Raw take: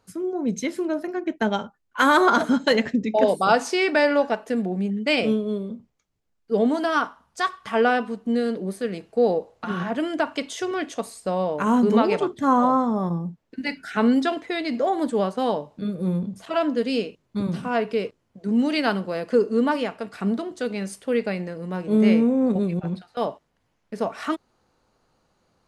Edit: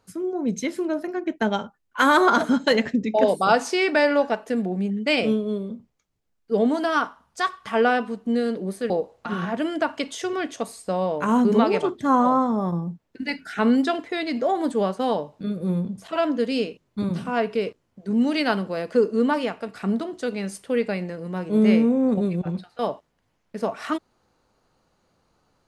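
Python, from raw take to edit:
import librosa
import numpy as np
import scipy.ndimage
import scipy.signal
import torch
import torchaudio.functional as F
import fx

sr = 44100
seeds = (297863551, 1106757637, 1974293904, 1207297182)

y = fx.edit(x, sr, fx.cut(start_s=8.9, length_s=0.38), tone=tone)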